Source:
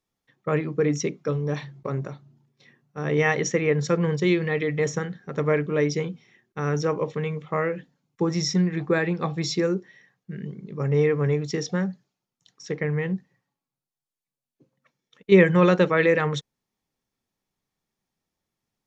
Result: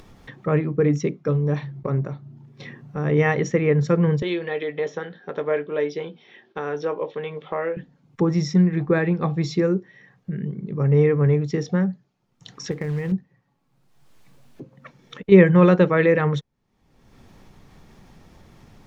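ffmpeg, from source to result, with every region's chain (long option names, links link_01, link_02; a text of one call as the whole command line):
ffmpeg -i in.wav -filter_complex "[0:a]asettb=1/sr,asplit=3[link_01][link_02][link_03];[link_01]atrim=end=4.224[link_04];[link_02]atrim=start=4.22:end=7.77,asetpts=PTS-STARTPTS,afade=type=in:duration=0.004:curve=qsin,afade=type=out:start_time=3.546:duration=0.004:curve=qsin,highpass=460,equalizer=frequency=1200:width_type=q:width=4:gain=-6,equalizer=frequency=2100:width_type=q:width=4:gain=-5,equalizer=frequency=3400:width_type=q:width=4:gain=6,lowpass=frequency=5000:width=0.5412,lowpass=frequency=5000:width=1.3066,asplit=2[link_05][link_06];[link_06]adelay=18,volume=-11.5dB[link_07];[link_05][link_07]amix=inputs=2:normalize=0,atrim=end_sample=156555[link_08];[link_03]atrim=start=7.766[link_09];[link_04][link_08]acrossfade=duration=0.004:curve1=hsin:curve2=qsin[link_10];[link_10][link_09]acrossfade=duration=0.004:curve1=qsin:curve2=hsin,asettb=1/sr,asplit=3[link_11][link_12][link_13];[link_11]atrim=end=12.714[link_14];[link_12]atrim=start=12.71:end=13.12,asetpts=PTS-STARTPTS,afade=type=in:duration=0.004:curve=qsin,afade=type=out:start_time=0.406:duration=0.004:curve=qsin,acompressor=threshold=-27dB:ratio=6:attack=3.2:release=140:knee=1:detection=peak,acrusher=bits=4:mode=log:mix=0:aa=0.000001[link_15];[link_13]atrim=start=13.116[link_16];[link_14][link_15]acrossfade=duration=0.004:curve1=hsin:curve2=qsin[link_17];[link_17][link_16]acrossfade=duration=0.004:curve1=qsin:curve2=hsin,lowpass=frequency=2000:poles=1,lowshelf=frequency=130:gain=9,acompressor=mode=upward:threshold=-26dB:ratio=2.5,volume=2dB" out.wav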